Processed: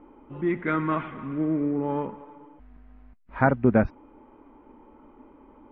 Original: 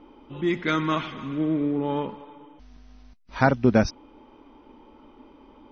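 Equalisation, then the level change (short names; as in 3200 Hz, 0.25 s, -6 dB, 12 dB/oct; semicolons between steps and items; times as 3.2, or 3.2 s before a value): LPF 2100 Hz 24 dB/oct; -1.0 dB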